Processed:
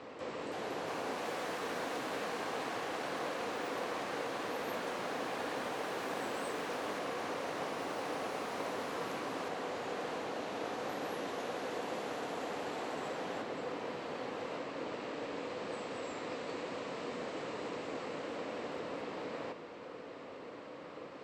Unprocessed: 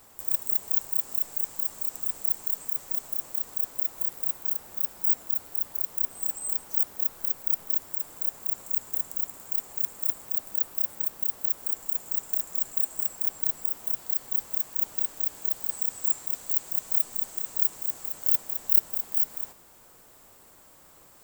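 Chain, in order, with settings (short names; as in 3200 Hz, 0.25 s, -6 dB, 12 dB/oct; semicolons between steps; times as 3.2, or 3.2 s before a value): speaker cabinet 170–3600 Hz, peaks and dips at 280 Hz +6 dB, 490 Hz +9 dB, 830 Hz -4 dB, 1500 Hz -4 dB, 3400 Hz -5 dB; echoes that change speed 0.393 s, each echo +7 st, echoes 3; gain +10.5 dB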